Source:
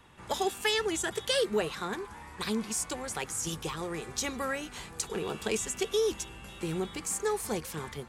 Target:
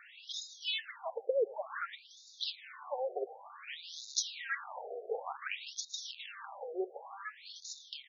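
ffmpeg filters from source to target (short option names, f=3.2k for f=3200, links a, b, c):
-filter_complex "[0:a]highpass=f=58:w=0.5412,highpass=f=58:w=1.3066,lowshelf=f=300:g=8,bandreject=f=60:t=h:w=6,bandreject=f=120:t=h:w=6,bandreject=f=180:t=h:w=6,bandreject=f=240:t=h:w=6,bandreject=f=300:t=h:w=6,acompressor=threshold=-37dB:ratio=6,asplit=3[a][b][c];[a]afade=t=out:st=3.83:d=0.02[d];[b]acrusher=bits=8:dc=4:mix=0:aa=0.000001,afade=t=in:st=3.83:d=0.02,afade=t=out:st=6.27:d=0.02[e];[c]afade=t=in:st=6.27:d=0.02[f];[d][e][f]amix=inputs=3:normalize=0,aecho=1:1:113:0.106,afftfilt=real='re*between(b*sr/1024,520*pow(5100/520,0.5+0.5*sin(2*PI*0.55*pts/sr))/1.41,520*pow(5100/520,0.5+0.5*sin(2*PI*0.55*pts/sr))*1.41)':imag='im*between(b*sr/1024,520*pow(5100/520,0.5+0.5*sin(2*PI*0.55*pts/sr))/1.41,520*pow(5100/520,0.5+0.5*sin(2*PI*0.55*pts/sr))*1.41)':win_size=1024:overlap=0.75,volume=9.5dB"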